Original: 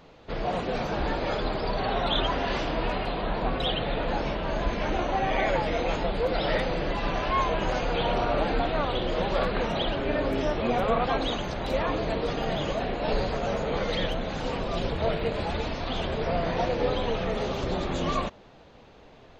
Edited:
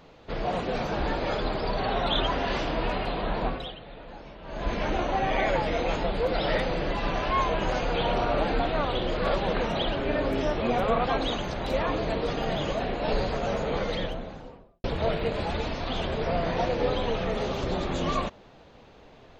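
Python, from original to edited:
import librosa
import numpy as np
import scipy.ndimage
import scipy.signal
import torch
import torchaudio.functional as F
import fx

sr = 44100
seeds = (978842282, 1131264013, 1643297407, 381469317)

y = fx.studio_fade_out(x, sr, start_s=13.67, length_s=1.17)
y = fx.edit(y, sr, fx.fade_down_up(start_s=3.45, length_s=1.26, db=-15.5, fade_s=0.37, curve='qua'),
    fx.reverse_span(start_s=9.17, length_s=0.36), tone=tone)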